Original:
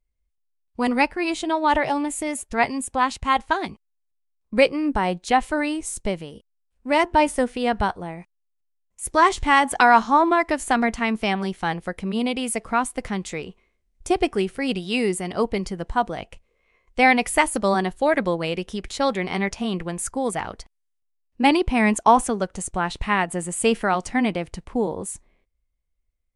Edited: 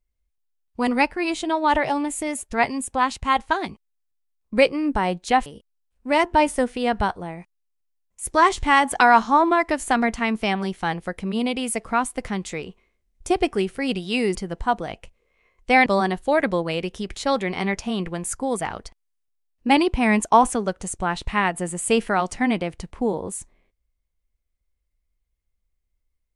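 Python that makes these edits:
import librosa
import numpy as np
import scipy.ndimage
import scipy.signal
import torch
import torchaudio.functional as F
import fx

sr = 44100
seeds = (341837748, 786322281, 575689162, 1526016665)

y = fx.edit(x, sr, fx.cut(start_s=5.46, length_s=0.8),
    fx.cut(start_s=15.15, length_s=0.49),
    fx.cut(start_s=17.15, length_s=0.45), tone=tone)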